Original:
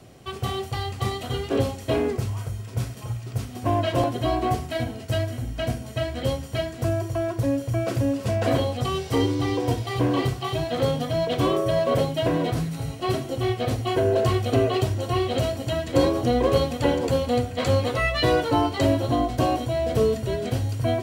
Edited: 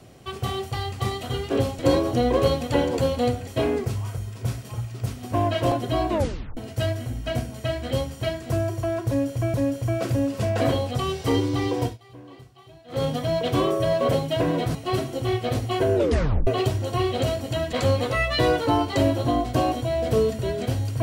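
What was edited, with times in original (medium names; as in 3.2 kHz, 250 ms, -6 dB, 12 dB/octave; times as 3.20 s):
4.42 s: tape stop 0.47 s
7.40–7.86 s: loop, 2 plays
9.67–10.91 s: dip -22 dB, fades 0.17 s
12.61–12.91 s: delete
14.11 s: tape stop 0.52 s
15.89–17.57 s: move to 1.79 s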